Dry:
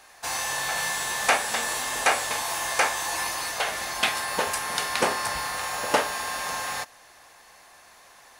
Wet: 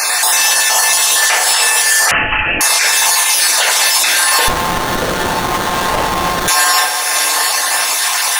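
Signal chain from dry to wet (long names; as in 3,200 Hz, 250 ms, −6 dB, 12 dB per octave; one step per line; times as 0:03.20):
time-frequency cells dropped at random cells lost 34%
high-pass filter 480 Hz 12 dB per octave
high-shelf EQ 2,400 Hz +11.5 dB
downward compressor 6 to 1, threshold −41 dBFS, peak gain reduction 26 dB
feedback delay with all-pass diffusion 677 ms, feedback 43%, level −10 dB
feedback delay network reverb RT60 0.96 s, low-frequency decay 1.4×, high-frequency decay 0.55×, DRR 1 dB
0:02.11–0:02.61: voice inversion scrambler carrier 3,500 Hz
boost into a limiter +31.5 dB
0:04.48–0:06.48: windowed peak hold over 17 samples
level −1 dB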